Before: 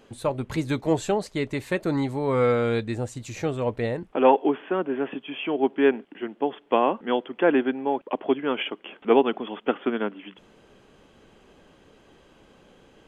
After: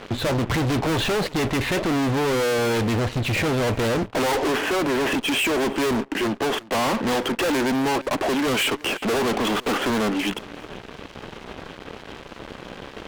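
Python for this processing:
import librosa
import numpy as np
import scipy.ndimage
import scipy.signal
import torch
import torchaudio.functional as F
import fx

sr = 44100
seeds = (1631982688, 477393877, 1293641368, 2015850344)

y = scipy.signal.sosfilt(scipy.signal.cheby2(4, 40, 6900.0, 'lowpass', fs=sr, output='sos'), x)
y = fx.fuzz(y, sr, gain_db=45.0, gate_db=-54.0)
y = y + 10.0 ** (-22.0 / 20.0) * np.pad(y, (int(357 * sr / 1000.0), 0))[:len(y)]
y = y * 10.0 ** (-7.5 / 20.0)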